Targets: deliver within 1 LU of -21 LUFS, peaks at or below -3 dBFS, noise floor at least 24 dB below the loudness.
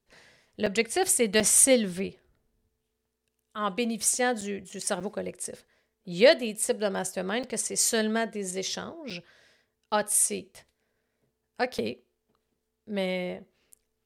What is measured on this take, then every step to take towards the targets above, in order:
dropouts 7; longest dropout 5.6 ms; loudness -26.0 LUFS; peak level -5.5 dBFS; loudness target -21.0 LUFS
-> interpolate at 0.66/1.40/4.41/5.00/7.43/9.10/11.78 s, 5.6 ms; trim +5 dB; peak limiter -3 dBFS

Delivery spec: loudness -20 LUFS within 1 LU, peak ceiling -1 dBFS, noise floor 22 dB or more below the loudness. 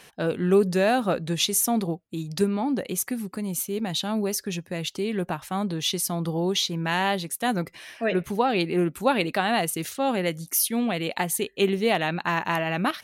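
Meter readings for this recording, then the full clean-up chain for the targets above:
loudness -25.5 LUFS; peak level -8.0 dBFS; loudness target -20.0 LUFS
-> trim +5.5 dB

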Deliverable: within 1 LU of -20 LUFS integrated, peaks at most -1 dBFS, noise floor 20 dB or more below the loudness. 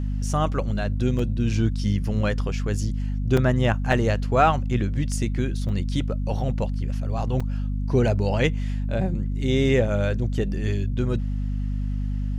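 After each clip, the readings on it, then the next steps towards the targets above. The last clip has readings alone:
dropouts 5; longest dropout 4.0 ms; hum 50 Hz; highest harmonic 250 Hz; hum level -23 dBFS; loudness -24.5 LUFS; peak level -6.0 dBFS; loudness target -20.0 LUFS
-> interpolate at 1.19/3.37/3.92/5.69/7.40 s, 4 ms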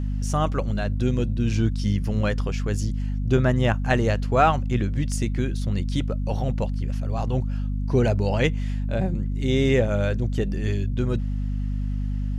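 dropouts 0; hum 50 Hz; highest harmonic 250 Hz; hum level -23 dBFS
-> de-hum 50 Hz, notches 5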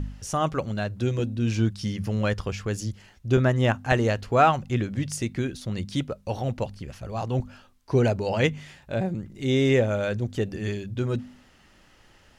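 hum not found; loudness -26.0 LUFS; peak level -7.5 dBFS; loudness target -20.0 LUFS
-> trim +6 dB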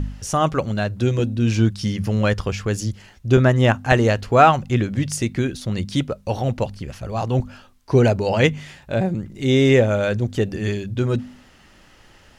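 loudness -20.0 LUFS; peak level -1.5 dBFS; noise floor -51 dBFS

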